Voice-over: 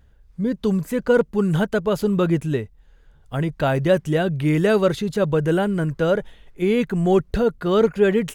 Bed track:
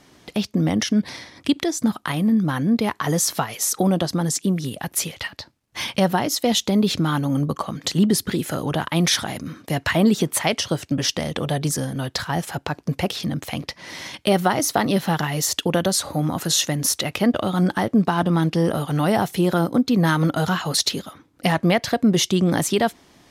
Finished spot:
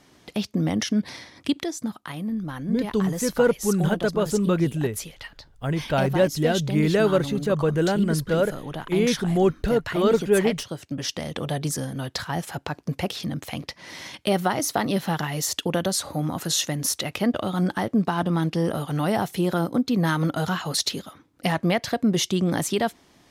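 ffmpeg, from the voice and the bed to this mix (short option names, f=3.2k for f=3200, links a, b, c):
-filter_complex "[0:a]adelay=2300,volume=-2.5dB[a];[1:a]volume=2.5dB,afade=t=out:st=1.44:d=0.47:silence=0.473151,afade=t=in:st=10.76:d=0.72:silence=0.501187[b];[a][b]amix=inputs=2:normalize=0"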